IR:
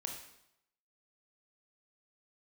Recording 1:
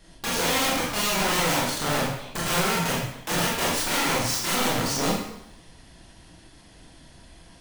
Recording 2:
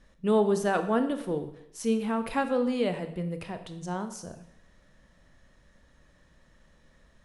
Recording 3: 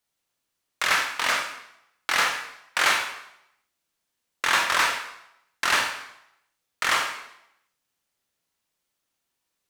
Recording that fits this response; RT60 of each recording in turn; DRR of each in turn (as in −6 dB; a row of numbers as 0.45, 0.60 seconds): 3; 0.80, 0.80, 0.80 seconds; −5.5, 8.5, 2.0 decibels